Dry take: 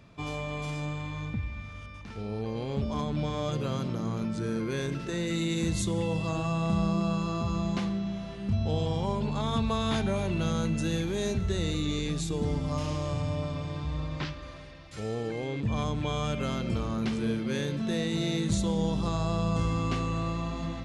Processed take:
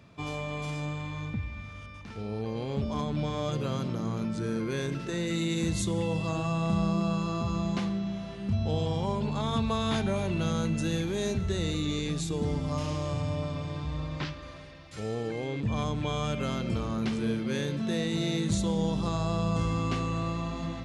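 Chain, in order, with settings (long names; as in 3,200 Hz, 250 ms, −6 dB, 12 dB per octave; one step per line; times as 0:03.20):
high-pass filter 56 Hz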